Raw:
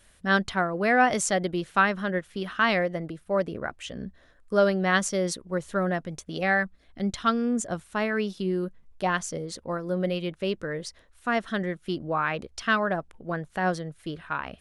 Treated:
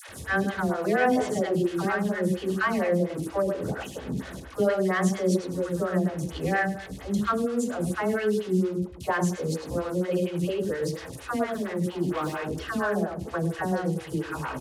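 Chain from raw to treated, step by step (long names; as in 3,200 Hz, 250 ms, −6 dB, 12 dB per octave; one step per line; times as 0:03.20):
linear delta modulator 64 kbit/s, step −35.5 dBFS
repeating echo 102 ms, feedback 16%, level −6 dB
on a send at −8.5 dB: convolution reverb RT60 0.55 s, pre-delay 3 ms
0:11.52–0:12.51: on the sum: hard clipping −27 dBFS, distortion −20 dB
high-pass filter 70 Hz
low-shelf EQ 340 Hz +6 dB
notch filter 2,400 Hz, Q 19
hollow resonant body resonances 340/2,500 Hz, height 6 dB
in parallel at +1.5 dB: downward compressor, threshold −29 dBFS, peak gain reduction 14.5 dB
on the sum: all-pass dispersion lows, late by 90 ms, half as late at 680 Hz
phaser with staggered stages 4.3 Hz
level −4 dB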